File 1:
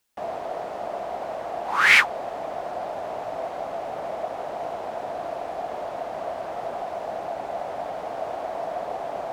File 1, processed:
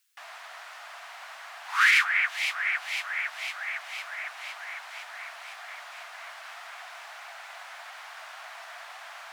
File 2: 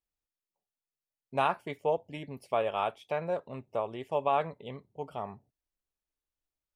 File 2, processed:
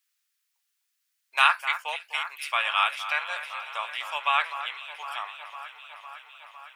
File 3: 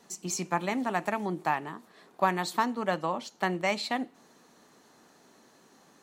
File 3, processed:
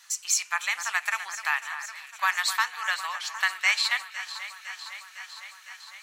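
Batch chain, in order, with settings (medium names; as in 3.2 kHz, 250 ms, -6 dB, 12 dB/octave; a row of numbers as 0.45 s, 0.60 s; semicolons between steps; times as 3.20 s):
high-pass 1.4 kHz 24 dB/octave; echo whose repeats swap between lows and highs 253 ms, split 2.4 kHz, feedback 84%, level -11 dB; loudness maximiser +13 dB; normalise loudness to -27 LUFS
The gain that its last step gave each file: -10.0 dB, +4.0 dB, -3.0 dB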